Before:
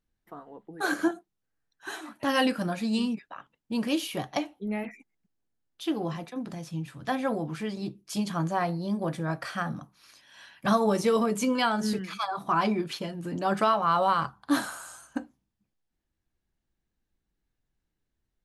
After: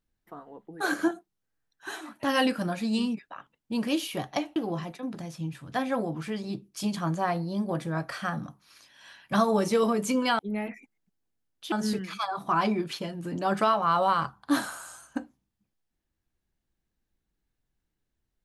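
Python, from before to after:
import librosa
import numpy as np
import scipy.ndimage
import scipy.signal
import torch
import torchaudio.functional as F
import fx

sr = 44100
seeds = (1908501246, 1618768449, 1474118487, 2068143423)

y = fx.edit(x, sr, fx.move(start_s=4.56, length_s=1.33, to_s=11.72), tone=tone)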